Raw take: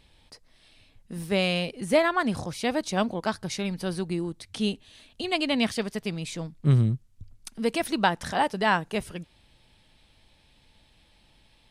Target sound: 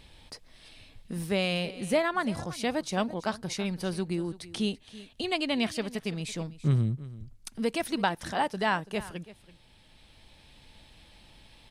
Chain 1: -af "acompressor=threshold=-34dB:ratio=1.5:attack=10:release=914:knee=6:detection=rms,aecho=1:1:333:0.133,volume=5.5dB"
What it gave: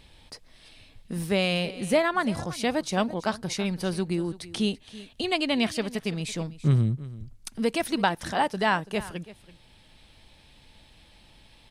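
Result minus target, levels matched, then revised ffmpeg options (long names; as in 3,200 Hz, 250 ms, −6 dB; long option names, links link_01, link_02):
downward compressor: peak gain reduction −3.5 dB
-af "acompressor=threshold=-44dB:ratio=1.5:attack=10:release=914:knee=6:detection=rms,aecho=1:1:333:0.133,volume=5.5dB"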